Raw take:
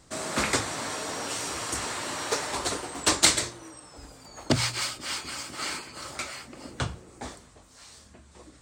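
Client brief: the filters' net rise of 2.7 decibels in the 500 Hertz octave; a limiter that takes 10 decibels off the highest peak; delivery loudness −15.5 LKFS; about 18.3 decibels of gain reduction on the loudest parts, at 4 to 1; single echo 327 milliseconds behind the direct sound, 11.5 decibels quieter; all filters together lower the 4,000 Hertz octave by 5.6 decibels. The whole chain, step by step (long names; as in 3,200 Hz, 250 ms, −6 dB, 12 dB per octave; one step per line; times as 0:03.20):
parametric band 500 Hz +3.5 dB
parametric band 4,000 Hz −7 dB
downward compressor 4 to 1, threshold −40 dBFS
brickwall limiter −33 dBFS
single-tap delay 327 ms −11.5 dB
level +28 dB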